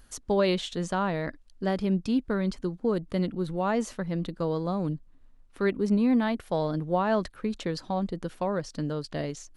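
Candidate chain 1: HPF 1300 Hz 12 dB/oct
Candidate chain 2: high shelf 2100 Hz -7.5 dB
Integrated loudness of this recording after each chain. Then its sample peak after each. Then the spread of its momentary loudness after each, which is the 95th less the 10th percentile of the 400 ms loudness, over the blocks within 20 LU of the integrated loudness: -40.5, -29.5 LUFS; -20.5, -14.0 dBFS; 10, 8 LU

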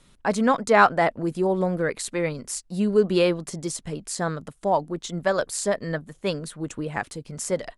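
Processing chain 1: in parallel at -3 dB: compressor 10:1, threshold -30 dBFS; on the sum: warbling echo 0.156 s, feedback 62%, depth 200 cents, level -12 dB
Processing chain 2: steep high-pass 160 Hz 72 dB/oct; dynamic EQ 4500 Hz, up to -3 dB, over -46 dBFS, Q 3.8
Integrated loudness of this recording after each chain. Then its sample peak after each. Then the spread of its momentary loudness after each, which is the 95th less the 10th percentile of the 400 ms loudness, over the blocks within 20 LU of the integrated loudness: -23.0, -25.0 LUFS; -2.5, -2.5 dBFS; 10, 13 LU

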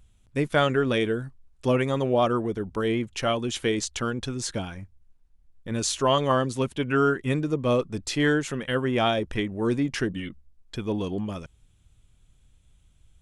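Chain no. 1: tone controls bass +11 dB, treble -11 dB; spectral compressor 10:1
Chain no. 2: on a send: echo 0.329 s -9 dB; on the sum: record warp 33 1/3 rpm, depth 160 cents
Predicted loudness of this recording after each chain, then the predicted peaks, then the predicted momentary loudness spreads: -27.0, -25.5 LUFS; -6.5, -9.5 dBFS; 19, 12 LU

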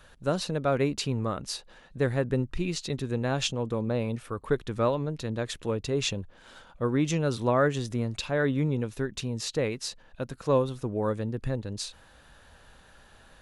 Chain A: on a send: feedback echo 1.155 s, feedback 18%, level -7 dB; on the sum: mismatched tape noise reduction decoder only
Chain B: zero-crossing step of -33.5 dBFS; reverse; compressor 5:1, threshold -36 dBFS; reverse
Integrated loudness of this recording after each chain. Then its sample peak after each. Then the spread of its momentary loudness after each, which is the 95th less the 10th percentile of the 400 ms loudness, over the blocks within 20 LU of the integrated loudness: -29.0, -38.5 LUFS; -12.5, -24.5 dBFS; 11, 3 LU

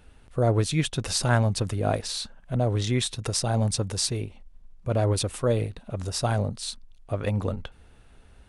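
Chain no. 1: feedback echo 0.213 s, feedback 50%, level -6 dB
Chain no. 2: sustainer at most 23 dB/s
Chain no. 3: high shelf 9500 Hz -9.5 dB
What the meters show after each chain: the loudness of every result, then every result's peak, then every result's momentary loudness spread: -26.0, -24.5, -27.0 LUFS; -8.0, -6.0, -8.0 dBFS; 13, 14, 12 LU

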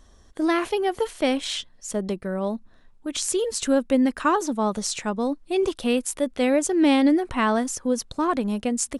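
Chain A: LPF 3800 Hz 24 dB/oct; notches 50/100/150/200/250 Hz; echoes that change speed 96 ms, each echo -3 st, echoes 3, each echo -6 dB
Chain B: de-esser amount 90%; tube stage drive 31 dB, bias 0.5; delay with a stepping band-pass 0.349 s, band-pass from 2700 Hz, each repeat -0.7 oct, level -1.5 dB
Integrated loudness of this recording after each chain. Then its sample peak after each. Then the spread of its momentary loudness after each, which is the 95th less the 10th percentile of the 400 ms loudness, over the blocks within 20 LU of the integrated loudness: -23.5, -35.0 LUFS; -8.5, -23.5 dBFS; 8, 5 LU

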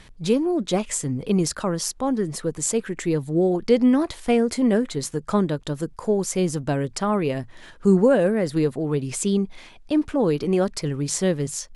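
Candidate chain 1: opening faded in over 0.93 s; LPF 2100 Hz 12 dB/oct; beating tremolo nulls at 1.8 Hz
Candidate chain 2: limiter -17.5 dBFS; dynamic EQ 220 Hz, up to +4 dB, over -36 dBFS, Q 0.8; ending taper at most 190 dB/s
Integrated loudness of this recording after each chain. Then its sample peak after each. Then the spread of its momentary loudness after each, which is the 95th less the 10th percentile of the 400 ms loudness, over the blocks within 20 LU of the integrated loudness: -26.0, -25.0 LUFS; -9.5, -13.5 dBFS; 10, 8 LU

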